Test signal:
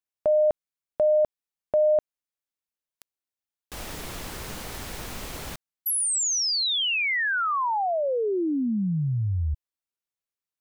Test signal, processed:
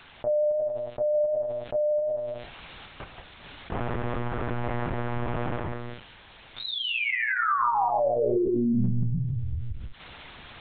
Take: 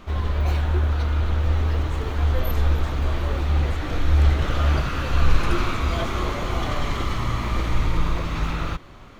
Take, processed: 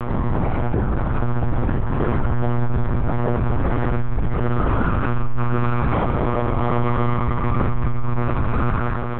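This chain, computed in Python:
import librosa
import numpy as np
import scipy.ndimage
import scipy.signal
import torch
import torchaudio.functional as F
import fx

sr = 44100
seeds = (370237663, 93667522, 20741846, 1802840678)

p1 = scipy.signal.sosfilt(scipy.signal.butter(2, 1300.0, 'lowpass', fs=sr, output='sos'), x)
p2 = p1 + 0.9 * np.pad(p1, (int(5.0 * sr / 1000.0), 0))[:len(p1)]
p3 = fx.rider(p2, sr, range_db=3, speed_s=0.5)
p4 = fx.quant_dither(p3, sr, seeds[0], bits=12, dither='triangular')
p5 = fx.comb_fb(p4, sr, f0_hz=95.0, decay_s=0.4, harmonics='all', damping=0.0, mix_pct=60)
p6 = fx.tremolo_random(p5, sr, seeds[1], hz=3.5, depth_pct=55)
p7 = p6 + fx.echo_single(p6, sr, ms=171, db=-9.0, dry=0)
p8 = fx.rev_gated(p7, sr, seeds[2], gate_ms=220, shape='flat', drr_db=11.0)
p9 = fx.lpc_monotone(p8, sr, seeds[3], pitch_hz=120.0, order=10)
y = fx.env_flatten(p9, sr, amount_pct=70)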